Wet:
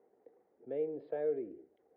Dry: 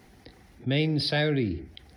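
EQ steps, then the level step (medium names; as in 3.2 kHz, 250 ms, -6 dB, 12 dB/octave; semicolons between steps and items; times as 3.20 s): ladder band-pass 510 Hz, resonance 65%; distance through air 490 m; 0.0 dB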